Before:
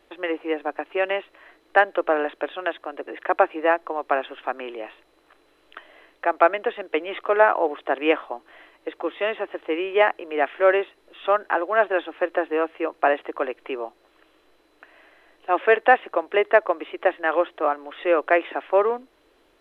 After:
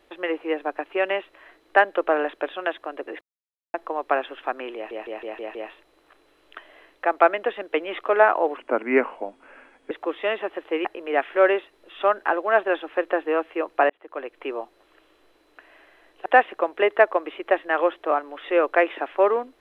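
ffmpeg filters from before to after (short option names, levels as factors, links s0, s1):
-filter_complex "[0:a]asplit=13[s0][s1][s2][s3][s4][s5][s6][s7][s8][s9][s10][s11][s12];[s0]atrim=end=3.21,asetpts=PTS-STARTPTS,afade=t=out:st=3.206:d=0.004:c=hsin[s13];[s1]atrim=start=3.21:end=3.74,asetpts=PTS-STARTPTS,volume=0[s14];[s2]atrim=start=3.74:end=4.912,asetpts=PTS-STARTPTS,afade=t=in:d=0.004:c=hsin[s15];[s3]atrim=start=4.748:end=4.912[s16];[s4]atrim=start=4.748:end=4.912[s17];[s5]atrim=start=4.748:end=4.912[s18];[s6]atrim=start=4.748:end=4.912[s19];[s7]atrim=start=4.748:end=7.774[s20];[s8]atrim=start=7.77:end=8.88,asetpts=PTS-STARTPTS,asetrate=36603,aresample=44100,atrim=end_sample=58977,asetpts=PTS-STARTPTS[s21];[s9]atrim=start=8.876:end=9.822[s22];[s10]atrim=start=10.088:end=13.14,asetpts=PTS-STARTPTS,afade=t=out:st=3.048:d=0.004:c=hsin[s23];[s11]atrim=start=13.14:end=15.502,asetpts=PTS-STARTPTS,afade=t=in:d=0.63[s24];[s12]atrim=start=15.798[s25];[s13][s14][s15]concat=n=3:v=0:a=1[s26];[s26][s16]acrossfade=d=0.004:c1=hsin:c2=hsin[s27];[s27][s17]acrossfade=d=0.004:c1=hsin:c2=hsin[s28];[s28][s18]acrossfade=d=0.004:c1=hsin:c2=hsin[s29];[s29][s19]acrossfade=d=0.004:c1=hsin:c2=hsin[s30];[s30][s20]acrossfade=d=0.004:c1=hsin:c2=hsin[s31];[s31][s21]acrossfade=d=0.004:c1=hsin:c2=hsin[s32];[s32][s22]acrossfade=d=0.004:c1=hsin:c2=hsin[s33];[s23][s24]concat=n=2:v=0:a=1[s34];[s33][s34]acrossfade=d=0.004:c1=hsin:c2=hsin[s35];[s35][s25]acrossfade=d=0.004:c1=hsin:c2=hsin"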